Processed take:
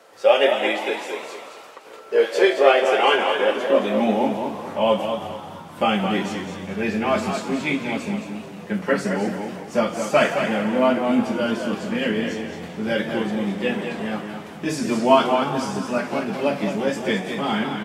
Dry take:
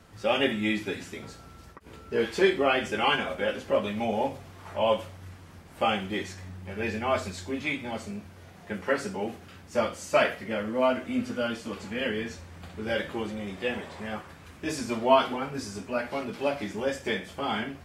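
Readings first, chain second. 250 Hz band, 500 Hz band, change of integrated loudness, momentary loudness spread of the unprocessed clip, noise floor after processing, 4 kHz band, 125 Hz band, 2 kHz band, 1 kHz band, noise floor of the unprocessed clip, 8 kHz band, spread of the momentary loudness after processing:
+9.0 dB, +8.0 dB, +7.0 dB, 16 LU, -40 dBFS, +6.0 dB, +7.0 dB, +6.0 dB, +7.0 dB, -49 dBFS, +5.5 dB, 13 LU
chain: high-pass sweep 520 Hz -> 170 Hz, 2.74–4.63; frequency-shifting echo 0.172 s, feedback 63%, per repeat +96 Hz, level -14 dB; warbling echo 0.217 s, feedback 34%, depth 75 cents, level -7 dB; gain +4.5 dB

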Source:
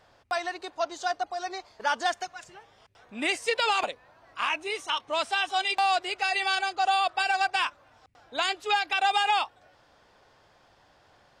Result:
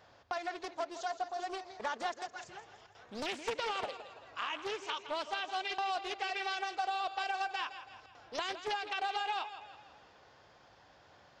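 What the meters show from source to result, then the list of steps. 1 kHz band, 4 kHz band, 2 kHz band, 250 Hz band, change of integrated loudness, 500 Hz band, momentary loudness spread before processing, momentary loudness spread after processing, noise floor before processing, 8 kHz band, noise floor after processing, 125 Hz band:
-9.5 dB, -10.5 dB, -11.0 dB, -6.5 dB, -10.0 dB, -7.0 dB, 11 LU, 14 LU, -61 dBFS, -10.5 dB, -62 dBFS, n/a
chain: HPF 53 Hz; dynamic EQ 410 Hz, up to +6 dB, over -41 dBFS, Q 0.92; compressor 2.5:1, threshold -38 dBFS, peak gain reduction 13.5 dB; thinning echo 0.165 s, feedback 49%, high-pass 150 Hz, level -11.5 dB; downsampling 16000 Hz; Doppler distortion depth 0.82 ms; gain -1 dB

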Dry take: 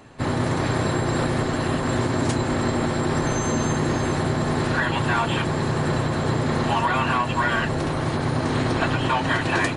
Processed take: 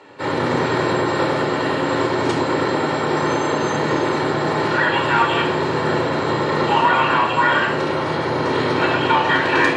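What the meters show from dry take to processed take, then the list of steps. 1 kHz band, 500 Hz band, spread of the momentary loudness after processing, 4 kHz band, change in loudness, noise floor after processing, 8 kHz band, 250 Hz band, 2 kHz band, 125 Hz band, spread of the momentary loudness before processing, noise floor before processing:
+6.5 dB, +6.5 dB, 4 LU, +5.5 dB, +4.5 dB, -22 dBFS, -4.0 dB, +2.0 dB, +6.0 dB, -3.5 dB, 2 LU, -26 dBFS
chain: BPF 330–4600 Hz; shoebox room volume 2400 m³, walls furnished, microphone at 4.5 m; gain +2.5 dB

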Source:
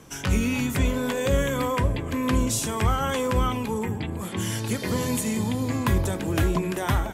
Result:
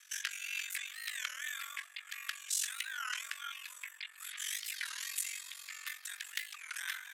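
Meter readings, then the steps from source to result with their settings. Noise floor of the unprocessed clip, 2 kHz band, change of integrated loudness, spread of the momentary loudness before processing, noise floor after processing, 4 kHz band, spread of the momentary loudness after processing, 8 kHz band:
-34 dBFS, -6.5 dB, -14.0 dB, 5 LU, -57 dBFS, -5.5 dB, 8 LU, -6.0 dB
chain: ring modulator 23 Hz; compressor 2.5:1, threshold -28 dBFS, peak gain reduction 6.5 dB; frequency shift +120 Hz; Chebyshev high-pass 1600 Hz, order 4; record warp 33 1/3 rpm, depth 250 cents

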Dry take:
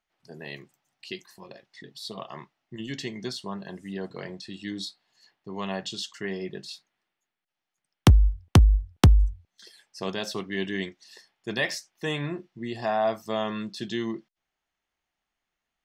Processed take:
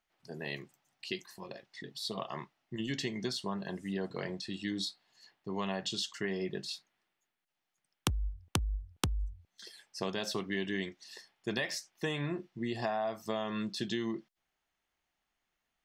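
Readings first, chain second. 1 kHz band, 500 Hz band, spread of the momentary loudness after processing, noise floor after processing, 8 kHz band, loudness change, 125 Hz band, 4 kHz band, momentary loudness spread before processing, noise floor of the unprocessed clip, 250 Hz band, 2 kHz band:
-7.0 dB, -5.5 dB, 12 LU, under -85 dBFS, -3.0 dB, -10.0 dB, -15.0 dB, -3.0 dB, 21 LU, under -85 dBFS, -6.0 dB, -5.5 dB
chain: compressor 12:1, threshold -30 dBFS, peak gain reduction 20 dB

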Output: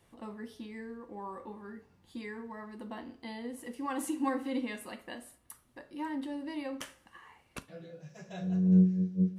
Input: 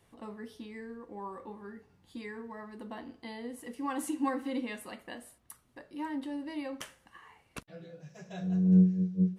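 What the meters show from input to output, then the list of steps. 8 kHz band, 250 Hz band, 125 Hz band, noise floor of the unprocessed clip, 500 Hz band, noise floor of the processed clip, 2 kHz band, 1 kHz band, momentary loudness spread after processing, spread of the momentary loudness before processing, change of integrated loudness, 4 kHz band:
0.0 dB, -0.5 dB, -1.0 dB, -68 dBFS, 0.0 dB, -67 dBFS, 0.0 dB, 0.0 dB, 21 LU, 21 LU, -1.5 dB, +0.5 dB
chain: two-slope reverb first 0.34 s, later 2 s, from -26 dB, DRR 12 dB

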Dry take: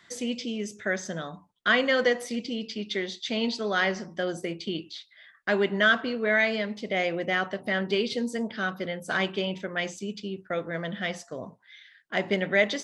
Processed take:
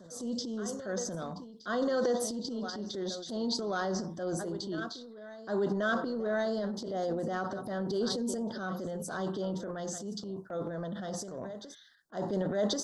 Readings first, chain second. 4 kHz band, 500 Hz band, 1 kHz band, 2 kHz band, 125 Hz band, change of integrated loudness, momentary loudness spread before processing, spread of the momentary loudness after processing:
-8.5 dB, -4.5 dB, -5.0 dB, -15.0 dB, -2.0 dB, -6.5 dB, 12 LU, 10 LU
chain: Butterworth band-stop 2400 Hz, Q 0.77; reverse echo 1.085 s -16 dB; transient shaper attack -6 dB, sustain +9 dB; gain -4 dB

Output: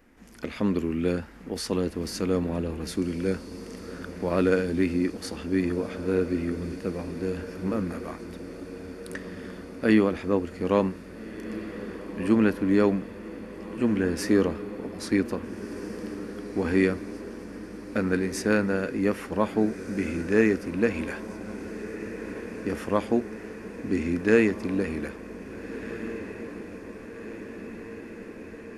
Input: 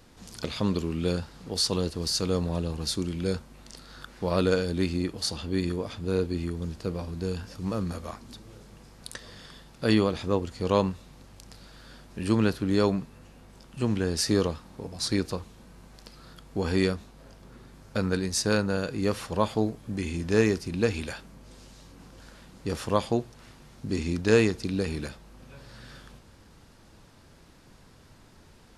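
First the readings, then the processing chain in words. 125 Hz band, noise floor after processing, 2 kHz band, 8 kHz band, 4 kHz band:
-3.0 dB, -42 dBFS, +3.5 dB, -6.5 dB, -8.5 dB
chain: graphic EQ 125/250/1000/2000/4000/8000 Hz -11/+7/-3/+8/-12/-6 dB; AGC gain up to 5 dB; diffused feedback echo 1.698 s, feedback 71%, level -13 dB; gain -4 dB

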